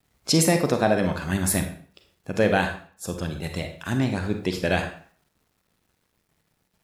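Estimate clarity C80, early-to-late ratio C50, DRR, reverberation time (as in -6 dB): 11.5 dB, 8.5 dB, 5.5 dB, 0.50 s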